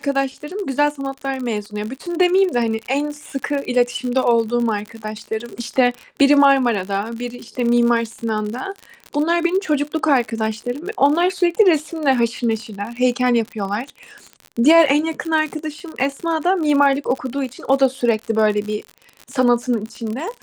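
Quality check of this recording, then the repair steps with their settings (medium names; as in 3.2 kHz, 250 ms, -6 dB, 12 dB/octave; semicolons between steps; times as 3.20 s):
crackle 55 per s -25 dBFS
10.30–10.31 s: dropout 9.3 ms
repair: de-click; interpolate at 10.30 s, 9.3 ms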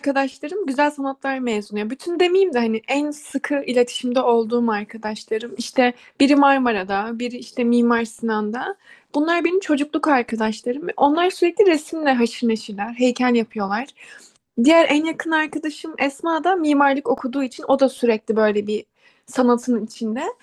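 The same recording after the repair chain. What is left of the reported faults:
nothing left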